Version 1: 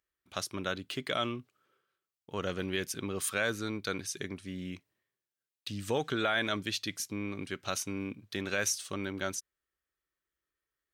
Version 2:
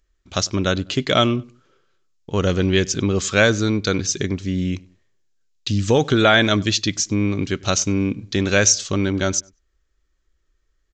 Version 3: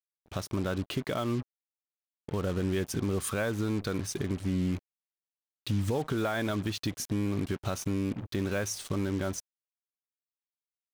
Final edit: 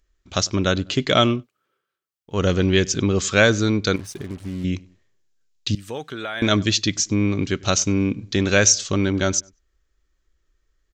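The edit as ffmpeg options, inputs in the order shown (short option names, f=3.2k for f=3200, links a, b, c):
-filter_complex "[0:a]asplit=2[a][b];[1:a]asplit=4[c][d][e][f];[c]atrim=end=1.47[g];[a]atrim=start=1.31:end=2.42[h];[d]atrim=start=2.26:end=3.962[i];[2:a]atrim=start=3.958:end=4.642[j];[e]atrim=start=4.638:end=5.752[k];[b]atrim=start=5.748:end=6.422[l];[f]atrim=start=6.418[m];[g][h]acrossfade=d=0.16:c1=tri:c2=tri[n];[n][i]acrossfade=d=0.16:c1=tri:c2=tri[o];[o][j]acrossfade=d=0.004:c1=hsin:c2=hsin[p];[p][k]acrossfade=d=0.004:c1=hsin:c2=hsin[q];[q][l]acrossfade=d=0.004:c1=hsin:c2=hsin[r];[r][m]acrossfade=d=0.004:c1=hsin:c2=hsin"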